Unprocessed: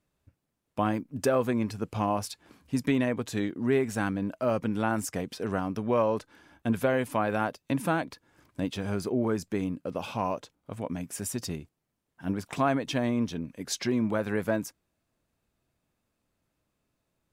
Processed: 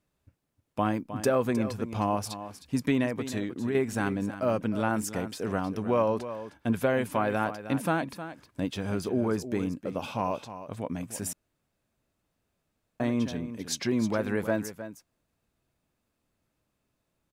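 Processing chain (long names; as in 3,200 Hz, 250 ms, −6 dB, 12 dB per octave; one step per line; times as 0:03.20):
0:03.06–0:03.75: downward compressor, threshold −27 dBFS, peak gain reduction 7 dB
single-tap delay 311 ms −12 dB
0:11.33–0:13.00: fill with room tone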